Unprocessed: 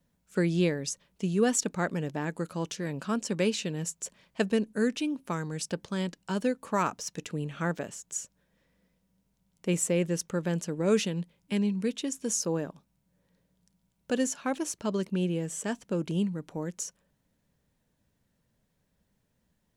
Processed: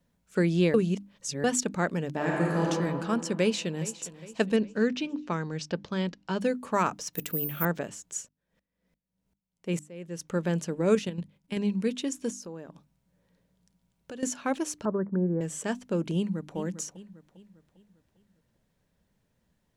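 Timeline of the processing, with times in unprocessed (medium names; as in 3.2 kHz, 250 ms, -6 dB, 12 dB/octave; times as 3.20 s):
0.74–1.44 s: reverse
2.13–2.65 s: reverb throw, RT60 2.6 s, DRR -4.5 dB
3.40–3.92 s: echo throw 410 ms, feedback 50%, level -16 dB
4.56–6.41 s: low-pass 5.9 kHz 24 dB/octave
7.13–7.65 s: careless resampling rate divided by 3×, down none, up zero stuff
8.21–10.30 s: sawtooth tremolo in dB swelling 3.5 Hz -> 1.7 Hz, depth 27 dB
10.95–11.57 s: level held to a coarse grid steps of 10 dB
12.30–14.23 s: compression 3:1, threshold -43 dBFS
14.85–15.41 s: steep low-pass 1.8 kHz 72 dB/octave
16.15–16.56 s: echo throw 400 ms, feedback 45%, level -11.5 dB
whole clip: treble shelf 6.7 kHz -5 dB; hum notches 50/100/150/200/250/300 Hz; trim +2 dB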